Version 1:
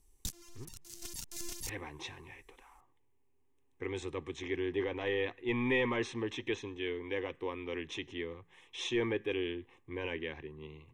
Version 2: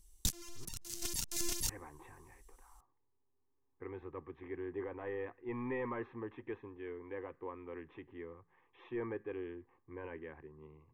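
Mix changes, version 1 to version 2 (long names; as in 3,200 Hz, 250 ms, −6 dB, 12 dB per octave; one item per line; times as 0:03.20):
speech: add transistor ladder low-pass 1,700 Hz, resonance 35%
background +5.5 dB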